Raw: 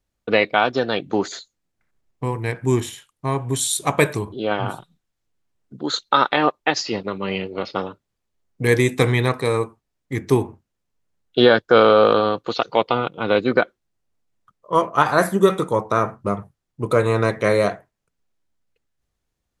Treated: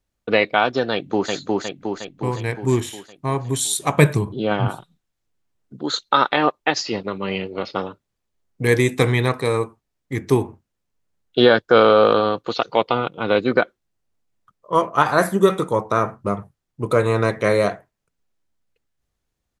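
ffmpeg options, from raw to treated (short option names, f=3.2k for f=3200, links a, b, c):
-filter_complex "[0:a]asplit=2[a][b];[b]afade=t=in:st=0.92:d=0.01,afade=t=out:st=1.32:d=0.01,aecho=0:1:360|720|1080|1440|1800|2160|2520|2880|3240:0.891251|0.534751|0.32085|0.19251|0.115506|0.0693037|0.0415822|0.0249493|0.0149696[c];[a][c]amix=inputs=2:normalize=0,asettb=1/sr,asplit=3[d][e][f];[d]atrim=end=3.974[g];[e]atrim=start=3.97:end=4.68,asetpts=PTS-STARTPTS,afade=t=in:d=0.004:c=qsin,afade=t=out:st=0.706:d=0.004:c=qsin,equalizer=f=150:t=o:w=1.1:g=10[h];[f]atrim=start=4.676[i];[g][h]acrossfade=d=0.004:c1=hsin:c2=qsin[j];[j][i]acrossfade=d=0.004:c1=qsin:c2=hsin"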